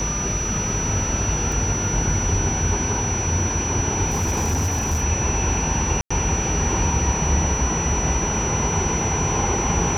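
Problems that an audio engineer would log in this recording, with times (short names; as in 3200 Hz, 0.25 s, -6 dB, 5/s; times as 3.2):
tone 5900 Hz -25 dBFS
1.52 gap 3.1 ms
4.09–5.04 clipped -17.5 dBFS
6.01–6.11 gap 95 ms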